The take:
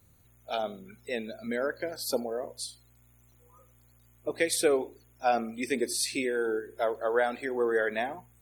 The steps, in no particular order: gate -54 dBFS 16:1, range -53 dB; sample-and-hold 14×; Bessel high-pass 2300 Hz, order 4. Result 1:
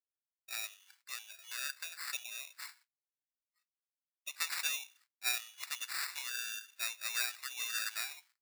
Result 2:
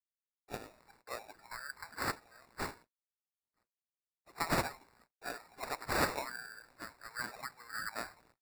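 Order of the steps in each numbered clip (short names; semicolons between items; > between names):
sample-and-hold > gate > Bessel high-pass; gate > Bessel high-pass > sample-and-hold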